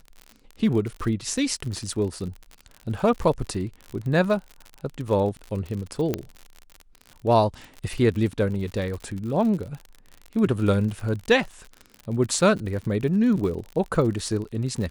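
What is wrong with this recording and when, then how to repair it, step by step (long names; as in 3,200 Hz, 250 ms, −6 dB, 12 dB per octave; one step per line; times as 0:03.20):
surface crackle 58 per second −31 dBFS
0:06.14: click −11 dBFS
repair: click removal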